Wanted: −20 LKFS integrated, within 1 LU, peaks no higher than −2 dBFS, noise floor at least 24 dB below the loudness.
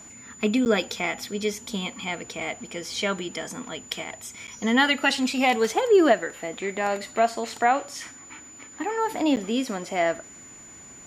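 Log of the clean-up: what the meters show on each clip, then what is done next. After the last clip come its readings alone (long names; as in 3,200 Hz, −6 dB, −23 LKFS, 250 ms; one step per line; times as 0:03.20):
number of dropouts 3; longest dropout 9.4 ms; interfering tone 7,000 Hz; level of the tone −44 dBFS; integrated loudness −25.0 LKFS; sample peak −7.5 dBFS; target loudness −20.0 LKFS
→ repair the gap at 0:00.65/0:04.47/0:09.36, 9.4 ms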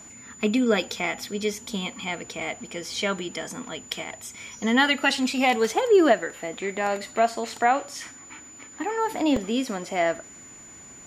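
number of dropouts 0; interfering tone 7,000 Hz; level of the tone −44 dBFS
→ notch filter 7,000 Hz, Q 30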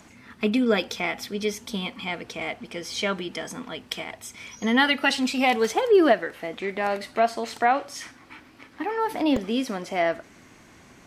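interfering tone none found; integrated loudness −25.0 LKFS; sample peak −7.5 dBFS; target loudness −20.0 LKFS
→ level +5 dB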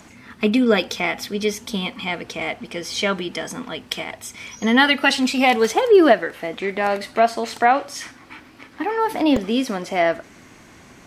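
integrated loudness −20.0 LKFS; sample peak −2.5 dBFS; background noise floor −47 dBFS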